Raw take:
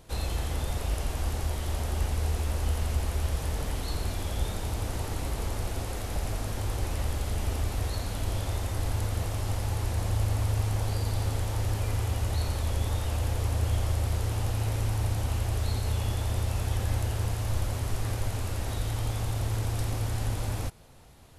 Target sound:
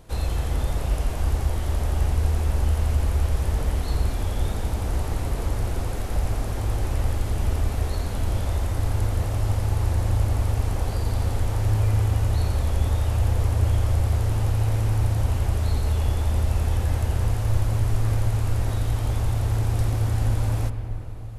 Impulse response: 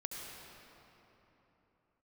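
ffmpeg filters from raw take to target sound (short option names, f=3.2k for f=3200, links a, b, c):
-filter_complex "[0:a]asplit=2[a][b];[1:a]atrim=start_sample=2205,lowpass=2.6k,lowshelf=f=130:g=8[c];[b][c]afir=irnorm=-1:irlink=0,volume=-3dB[d];[a][d]amix=inputs=2:normalize=0"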